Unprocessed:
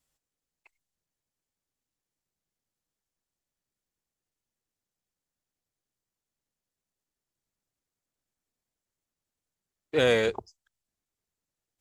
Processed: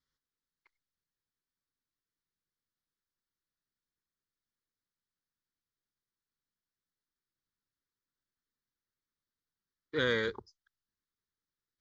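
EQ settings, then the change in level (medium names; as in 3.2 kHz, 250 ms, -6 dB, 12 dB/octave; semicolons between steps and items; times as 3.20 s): distance through air 94 m; bass shelf 340 Hz -6.5 dB; static phaser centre 2.6 kHz, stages 6; 0.0 dB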